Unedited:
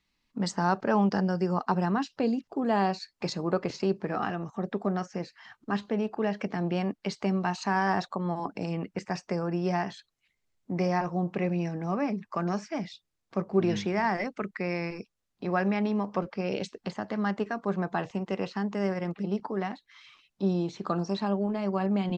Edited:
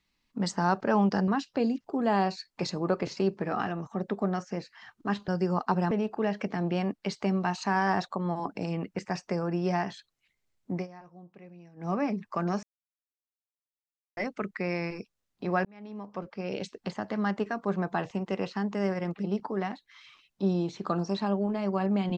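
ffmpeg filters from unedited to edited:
-filter_complex "[0:a]asplit=9[s0][s1][s2][s3][s4][s5][s6][s7][s8];[s0]atrim=end=1.282[s9];[s1]atrim=start=1.908:end=5.912[s10];[s2]atrim=start=1.278:end=1.912[s11];[s3]atrim=start=5.908:end=10.87,asetpts=PTS-STARTPTS,afade=t=out:st=4.832:d=0.13:silence=0.0891251[s12];[s4]atrim=start=10.87:end=11.76,asetpts=PTS-STARTPTS,volume=0.0891[s13];[s5]atrim=start=11.76:end=12.63,asetpts=PTS-STARTPTS,afade=t=in:d=0.13:silence=0.0891251,afade=t=out:st=0.866:d=0.004:c=hsin[s14];[s6]atrim=start=12.63:end=14.17,asetpts=PTS-STARTPTS,volume=0[s15];[s7]atrim=start=14.17:end=15.65,asetpts=PTS-STARTPTS,afade=t=in:d=0.004:c=hsin,afade=t=out:st=1.476:d=0.004:c=hsin[s16];[s8]atrim=start=15.65,asetpts=PTS-STARTPTS,afade=t=in:d=1.24[s17];[s9][s10]acrossfade=d=0.004:c1=hsin:c2=hsin[s18];[s18][s11]acrossfade=d=0.004:c1=hsin:c2=hsin[s19];[s12][s13][s14][s15][s16][s17]concat=n=6:v=0:a=1[s20];[s19][s20]acrossfade=d=0.004:c1=hsin:c2=hsin"

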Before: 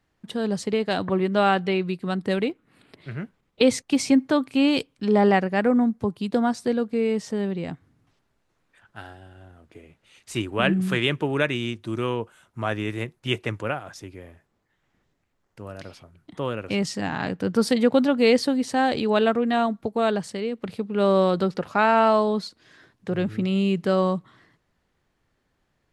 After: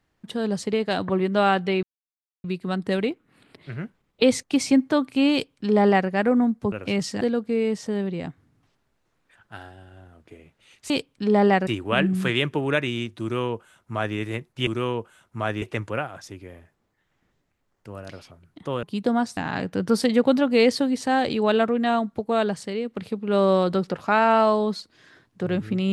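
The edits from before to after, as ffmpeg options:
-filter_complex "[0:a]asplit=10[s0][s1][s2][s3][s4][s5][s6][s7][s8][s9];[s0]atrim=end=1.83,asetpts=PTS-STARTPTS,afade=t=out:st=1.826:d=0.004:c=hsin,apad=pad_dur=0.61[s10];[s1]atrim=start=1.83:end=6.112,asetpts=PTS-STARTPTS,afade=t=in:d=0.004:c=hsin[s11];[s2]atrim=start=16.548:end=17.042[s12];[s3]atrim=start=6.648:end=10.342[s13];[s4]atrim=start=4.708:end=5.482[s14];[s5]atrim=start=10.338:end=13.342[s15];[s6]atrim=start=11.888:end=12.842[s16];[s7]atrim=start=13.338:end=16.552[s17];[s8]atrim=start=6.108:end=6.652[s18];[s9]atrim=start=17.038[s19];[s10][s11]concat=n=2:v=0:a=1[s20];[s20][s12]acrossfade=d=0.004:c1=hsin:c2=hsin[s21];[s21][s13]acrossfade=d=0.004:c1=hsin:c2=hsin[s22];[s22][s14]acrossfade=d=0.004:c1=hsin:c2=hsin[s23];[s23][s15]acrossfade=d=0.004:c1=hsin:c2=hsin[s24];[s24][s16]acrossfade=d=0.004:c1=hsin:c2=hsin[s25];[s25][s17]acrossfade=d=0.004:c1=hsin:c2=hsin[s26];[s26][s18]acrossfade=d=0.004:c1=hsin:c2=hsin[s27];[s27][s19]acrossfade=d=0.004:c1=hsin:c2=hsin"

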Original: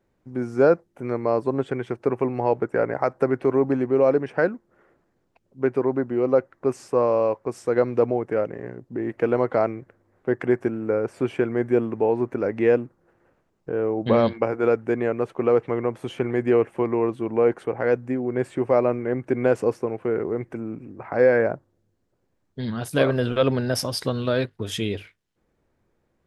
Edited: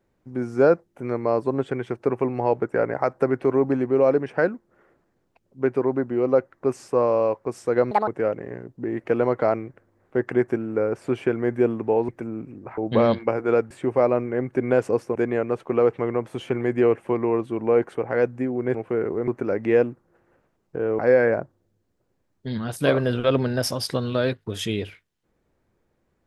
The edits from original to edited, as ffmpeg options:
-filter_complex "[0:a]asplit=10[s0][s1][s2][s3][s4][s5][s6][s7][s8][s9];[s0]atrim=end=7.914[s10];[s1]atrim=start=7.91:end=8.2,asetpts=PTS-STARTPTS,asetrate=77175,aresample=44100[s11];[s2]atrim=start=8.196:end=12.212[s12];[s3]atrim=start=20.418:end=21.112[s13];[s4]atrim=start=13.918:end=14.852[s14];[s5]atrim=start=18.438:end=19.892[s15];[s6]atrim=start=14.848:end=18.442[s16];[s7]atrim=start=19.888:end=20.422[s17];[s8]atrim=start=12.208:end=13.922[s18];[s9]atrim=start=21.108[s19];[s10][s11]acrossfade=d=0.004:c1=hsin:c2=hsin[s20];[s20][s12]acrossfade=d=0.004:c1=hsin:c2=hsin[s21];[s21][s13]acrossfade=d=0.004:c1=hsin:c2=hsin[s22];[s22][s14]acrossfade=d=0.004:c1=hsin:c2=hsin[s23];[s23][s15]acrossfade=d=0.004:c1=hsin:c2=hsin[s24];[s24][s16]acrossfade=d=0.004:c1=hsin:c2=hsin[s25];[s25][s17]acrossfade=d=0.004:c1=hsin:c2=hsin[s26];[s26][s18]acrossfade=d=0.004:c1=hsin:c2=hsin[s27];[s27][s19]acrossfade=d=0.004:c1=hsin:c2=hsin"

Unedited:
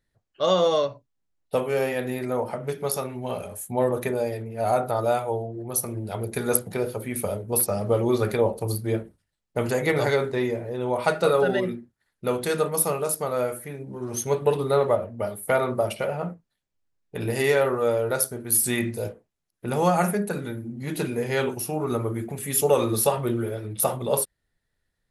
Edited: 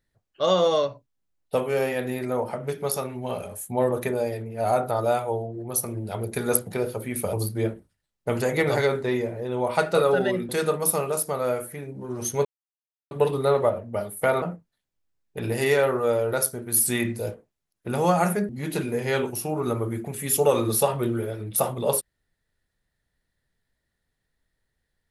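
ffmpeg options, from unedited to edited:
-filter_complex "[0:a]asplit=6[s0][s1][s2][s3][s4][s5];[s0]atrim=end=7.332[s6];[s1]atrim=start=8.618:end=11.782[s7];[s2]atrim=start=12.408:end=14.37,asetpts=PTS-STARTPTS,afade=t=out:st=1.958:d=0.004:c=hsin,apad=pad_dur=0.66[s8];[s3]atrim=start=14.37:end=15.682,asetpts=PTS-STARTPTS,afade=t=in:d=0.004:c=hsin[s9];[s4]atrim=start=16.198:end=20.272[s10];[s5]atrim=start=20.728[s11];[s6][s7]acrossfade=d=0.004:c1=hsin:c2=hsin[s12];[s8][s9]concat=n=2:v=0:a=1[s13];[s12][s13]acrossfade=d=0.004:c1=hsin:c2=hsin[s14];[s14][s10]acrossfade=d=0.004:c1=hsin:c2=hsin[s15];[s15][s11]acrossfade=d=0.004:c1=hsin:c2=hsin"

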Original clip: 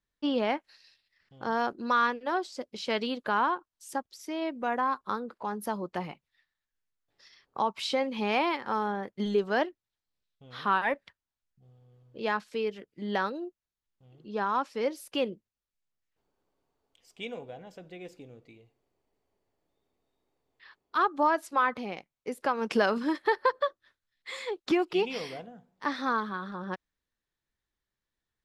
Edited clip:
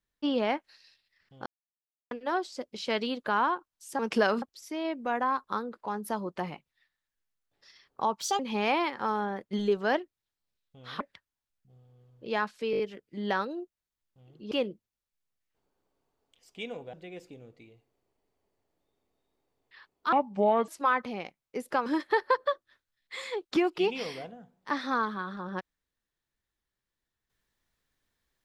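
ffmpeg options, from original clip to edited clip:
-filter_complex "[0:a]asplit=17[s0][s1][s2][s3][s4][s5][s6][s7][s8][s9][s10][s11][s12][s13][s14][s15][s16];[s0]atrim=end=1.46,asetpts=PTS-STARTPTS,afade=t=out:st=1.456:d=0.004:c=hsin[s17];[s1]atrim=start=1.46:end=2.11,asetpts=PTS-STARTPTS,volume=0[s18];[s2]atrim=start=2.11:end=3.992,asetpts=PTS-STARTPTS,afade=t=in:d=0.004:c=hsin[s19];[s3]atrim=start=22.578:end=23.012[s20];[s4]atrim=start=3.988:end=7.774[s21];[s5]atrim=start=7.77:end=8.06,asetpts=PTS-STARTPTS,asetrate=66150,aresample=44100[s22];[s6]atrim=start=8.056:end=10.672[s23];[s7]atrim=start=10.928:end=12.662[s24];[s8]atrim=start=12.638:end=12.662[s25];[s9]atrim=start=12.638:end=12.662[s26];[s10]atrim=start=12.638:end=12.662[s27];[s11]atrim=start=12.638:end=14.362[s28];[s12]atrim=start=15.128:end=17.552[s29];[s13]atrim=start=17.818:end=21.014[s30];[s14]atrim=start=21.01:end=21.4,asetpts=PTS-STARTPTS,asetrate=30870,aresample=44100[s31];[s15]atrim=start=21.396:end=22.582[s32];[s16]atrim=start=23.008[s33];[s17][s18][s19]concat=n=3:v=0:a=1[s34];[s34][s20]acrossfade=d=0.004:c1=hsin:c2=hsin[s35];[s35][s21]acrossfade=d=0.004:c1=hsin:c2=hsin[s36];[s36][s22]acrossfade=d=0.004:c1=hsin:c2=hsin[s37];[s37][s23]acrossfade=d=0.004:c1=hsin:c2=hsin[s38];[s38][s24]acrossfade=d=0.004:c1=hsin:c2=hsin[s39];[s39][s25]acrossfade=d=0.004:c1=hsin:c2=hsin[s40];[s40][s26]acrossfade=d=0.004:c1=hsin:c2=hsin[s41];[s41][s27]acrossfade=d=0.004:c1=hsin:c2=hsin[s42];[s42][s28]acrossfade=d=0.004:c1=hsin:c2=hsin[s43];[s43][s29]acrossfade=d=0.004:c1=hsin:c2=hsin[s44];[s44][s30]acrossfade=d=0.004:c1=hsin:c2=hsin[s45];[s45][s31]acrossfade=d=0.004:c1=hsin:c2=hsin[s46];[s46][s32]acrossfade=d=0.004:c1=hsin:c2=hsin[s47];[s47][s33]acrossfade=d=0.004:c1=hsin:c2=hsin"

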